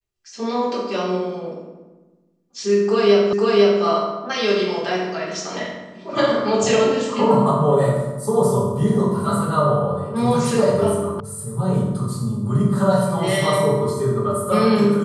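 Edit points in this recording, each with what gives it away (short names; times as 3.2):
3.33 repeat of the last 0.5 s
11.2 sound cut off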